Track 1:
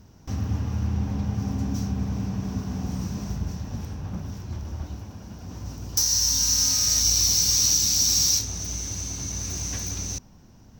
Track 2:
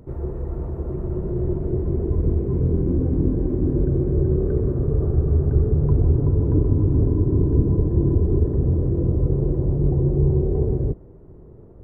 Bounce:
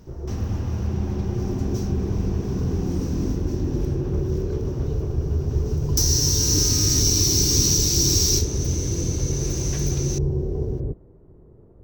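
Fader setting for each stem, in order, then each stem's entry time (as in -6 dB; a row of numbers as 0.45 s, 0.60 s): 0.0 dB, -5.0 dB; 0.00 s, 0.00 s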